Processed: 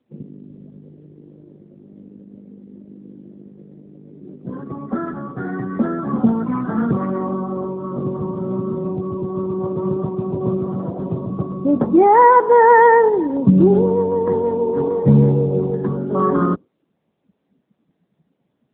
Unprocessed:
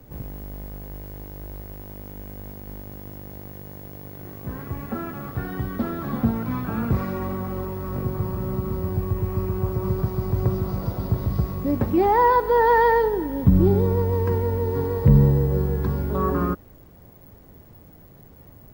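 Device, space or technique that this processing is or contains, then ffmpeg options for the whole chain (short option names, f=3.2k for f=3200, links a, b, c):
mobile call with aggressive noise cancelling: -af "highpass=f=160:w=0.5412,highpass=f=160:w=1.3066,afftdn=nr=25:nf=-34,volume=7.5dB" -ar 8000 -c:a libopencore_amrnb -b:a 10200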